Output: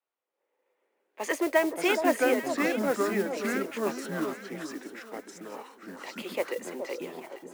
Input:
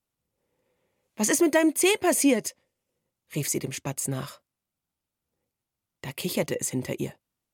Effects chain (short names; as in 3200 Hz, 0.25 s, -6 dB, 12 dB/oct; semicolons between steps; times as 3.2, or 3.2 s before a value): HPF 280 Hz 24 dB/oct; three-band isolator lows -18 dB, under 380 Hz, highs -18 dB, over 2900 Hz; echoes that change speed 0.265 s, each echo -4 st, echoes 2; modulation noise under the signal 19 dB; echo with dull and thin repeats by turns 0.421 s, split 1100 Hz, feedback 53%, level -7 dB